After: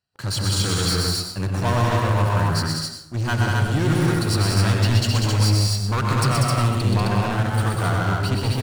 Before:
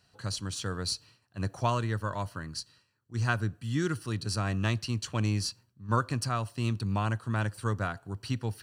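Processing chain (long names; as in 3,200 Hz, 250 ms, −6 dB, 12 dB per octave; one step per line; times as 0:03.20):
notch filter 6,000 Hz, Q 11
leveller curve on the samples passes 5
loudspeakers that aren't time-aligned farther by 43 metres −4 dB, 66 metres −3 dB, 90 metres −2 dB
dense smooth reverb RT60 0.8 s, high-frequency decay 0.6×, pre-delay 80 ms, DRR 5.5 dB
level −7 dB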